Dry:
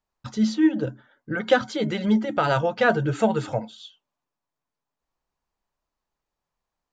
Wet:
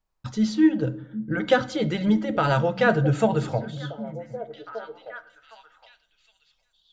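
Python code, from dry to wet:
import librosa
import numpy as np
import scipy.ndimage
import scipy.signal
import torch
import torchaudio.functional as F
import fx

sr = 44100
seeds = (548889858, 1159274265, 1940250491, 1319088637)

y = fx.low_shelf(x, sr, hz=95.0, db=10.5)
y = fx.echo_stepped(y, sr, ms=763, hz=200.0, octaves=1.4, feedback_pct=70, wet_db=-9.0)
y = fx.room_shoebox(y, sr, seeds[0], volume_m3=1900.0, walls='furnished', distance_m=0.6)
y = y * librosa.db_to_amplitude(-1.0)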